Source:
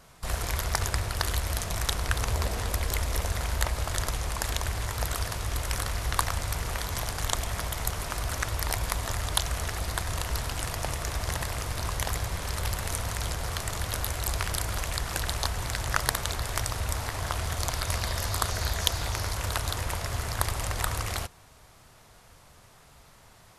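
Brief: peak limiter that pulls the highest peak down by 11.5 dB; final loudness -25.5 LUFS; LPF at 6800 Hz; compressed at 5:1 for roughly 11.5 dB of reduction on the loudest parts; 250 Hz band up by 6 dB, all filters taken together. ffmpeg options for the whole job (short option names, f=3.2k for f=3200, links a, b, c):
-af "lowpass=6.8k,equalizer=f=250:t=o:g=8.5,acompressor=threshold=-34dB:ratio=5,volume=14dB,alimiter=limit=-12.5dB:level=0:latency=1"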